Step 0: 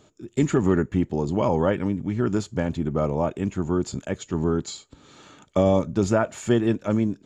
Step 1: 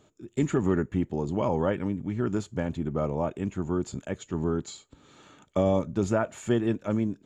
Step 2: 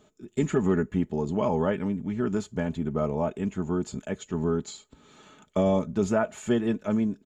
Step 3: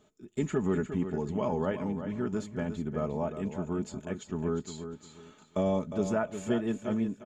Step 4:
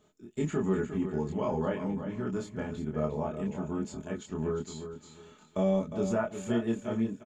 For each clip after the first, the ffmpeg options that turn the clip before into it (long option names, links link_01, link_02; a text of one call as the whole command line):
ffmpeg -i in.wav -af "equalizer=frequency=5000:width=2.2:gain=-5,volume=-4.5dB" out.wav
ffmpeg -i in.wav -af "aecho=1:1:4.7:0.46" out.wav
ffmpeg -i in.wav -af "aecho=1:1:356|712|1068:0.335|0.0871|0.0226,volume=-5dB" out.wav
ffmpeg -i in.wav -filter_complex "[0:a]asplit=2[link_01][link_02];[link_02]adelay=26,volume=-2dB[link_03];[link_01][link_03]amix=inputs=2:normalize=0,volume=-2.5dB" out.wav